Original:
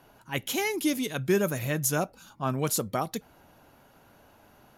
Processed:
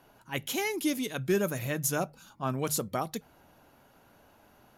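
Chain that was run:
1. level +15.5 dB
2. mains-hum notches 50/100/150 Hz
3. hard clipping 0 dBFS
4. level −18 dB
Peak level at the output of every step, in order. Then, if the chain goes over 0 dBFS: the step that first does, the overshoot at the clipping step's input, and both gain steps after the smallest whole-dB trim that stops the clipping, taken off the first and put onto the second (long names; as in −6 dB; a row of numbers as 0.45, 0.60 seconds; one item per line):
+3.5, +3.5, 0.0, −18.0 dBFS
step 1, 3.5 dB
step 1 +11.5 dB, step 4 −14 dB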